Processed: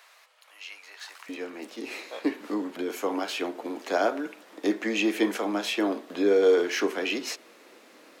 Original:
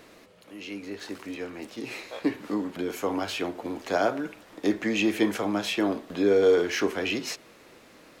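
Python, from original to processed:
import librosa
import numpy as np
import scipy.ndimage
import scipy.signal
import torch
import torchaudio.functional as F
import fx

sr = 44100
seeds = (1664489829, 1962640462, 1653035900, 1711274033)

y = fx.highpass(x, sr, hz=fx.steps((0.0, 810.0), (1.29, 240.0)), slope=24)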